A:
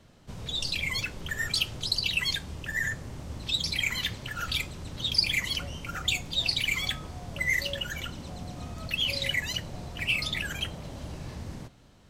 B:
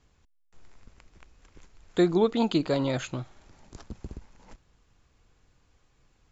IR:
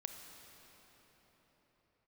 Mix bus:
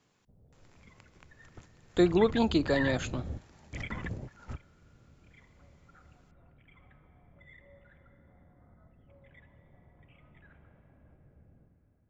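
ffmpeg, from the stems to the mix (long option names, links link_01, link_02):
-filter_complex "[0:a]lowpass=frequency=1600:width=0.5412,lowpass=frequency=1600:width=1.3066,afwtdn=0.00708,volume=0.5dB,asplit=2[link_01][link_02];[link_02]volume=-21dB[link_03];[1:a]highpass=frequency=140:width=0.5412,highpass=frequency=140:width=1.3066,volume=-1.5dB,asplit=2[link_04][link_05];[link_05]apad=whole_len=533300[link_06];[link_01][link_06]sidechaingate=range=-33dB:threshold=-54dB:ratio=16:detection=peak[link_07];[2:a]atrim=start_sample=2205[link_08];[link_03][link_08]afir=irnorm=-1:irlink=0[link_09];[link_07][link_04][link_09]amix=inputs=3:normalize=0"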